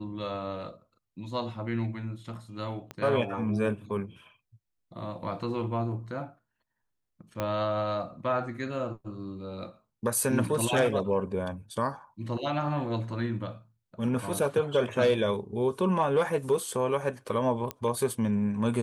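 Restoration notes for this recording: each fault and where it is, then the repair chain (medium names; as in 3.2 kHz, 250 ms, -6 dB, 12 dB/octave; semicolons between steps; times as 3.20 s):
2.91 s: pop -23 dBFS
7.40 s: pop -16 dBFS
17.71 s: pop -17 dBFS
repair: de-click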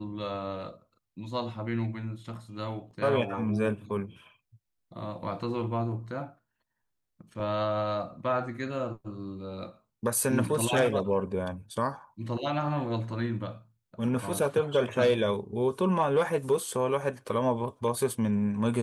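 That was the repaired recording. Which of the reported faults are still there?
2.91 s: pop
7.40 s: pop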